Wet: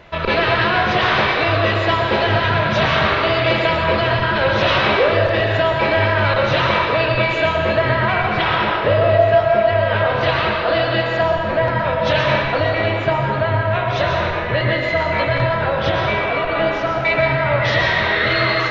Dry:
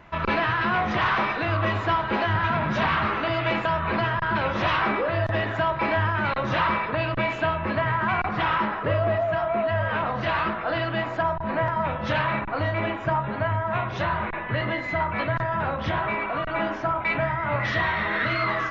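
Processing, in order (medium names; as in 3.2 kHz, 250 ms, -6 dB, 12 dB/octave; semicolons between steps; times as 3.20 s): graphic EQ 250/500/1000/4000 Hz -5/+8/-5/+8 dB; plate-style reverb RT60 1.3 s, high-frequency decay 1×, pre-delay 100 ms, DRR 1 dB; trim +5 dB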